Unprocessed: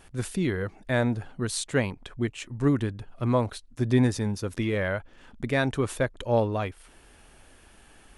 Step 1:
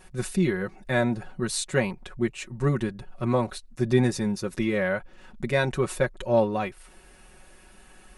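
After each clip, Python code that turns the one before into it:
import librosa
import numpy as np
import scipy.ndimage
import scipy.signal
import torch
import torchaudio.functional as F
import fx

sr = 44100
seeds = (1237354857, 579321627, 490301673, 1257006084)

y = fx.notch(x, sr, hz=3200.0, q=12.0)
y = y + 0.73 * np.pad(y, (int(5.4 * sr / 1000.0), 0))[:len(y)]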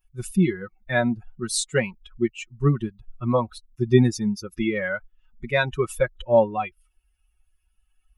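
y = fx.bin_expand(x, sr, power=2.0)
y = y * librosa.db_to_amplitude(6.5)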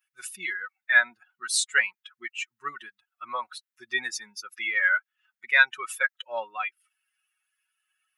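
y = fx.highpass_res(x, sr, hz=1600.0, q=2.6)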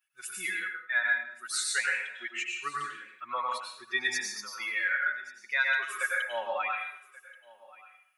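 y = fx.rev_plate(x, sr, seeds[0], rt60_s=0.62, hf_ratio=0.9, predelay_ms=85, drr_db=-1.5)
y = fx.rider(y, sr, range_db=4, speed_s=0.5)
y = y + 10.0 ** (-21.5 / 20.0) * np.pad(y, (int(1131 * sr / 1000.0), 0))[:len(y)]
y = y * librosa.db_to_amplitude(-6.5)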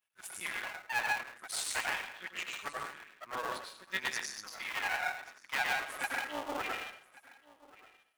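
y = fx.cycle_switch(x, sr, every=2, mode='muted')
y = y * librosa.db_to_amplitude(-2.5)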